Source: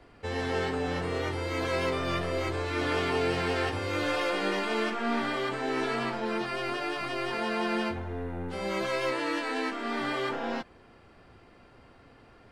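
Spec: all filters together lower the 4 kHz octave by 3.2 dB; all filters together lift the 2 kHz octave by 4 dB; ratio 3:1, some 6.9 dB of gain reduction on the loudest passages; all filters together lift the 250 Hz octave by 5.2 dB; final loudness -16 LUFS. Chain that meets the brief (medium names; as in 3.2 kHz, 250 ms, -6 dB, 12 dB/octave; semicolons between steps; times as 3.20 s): peaking EQ 250 Hz +6.5 dB; peaking EQ 2 kHz +6.5 dB; peaking EQ 4 kHz -7.5 dB; compression 3:1, threshold -31 dBFS; trim +17 dB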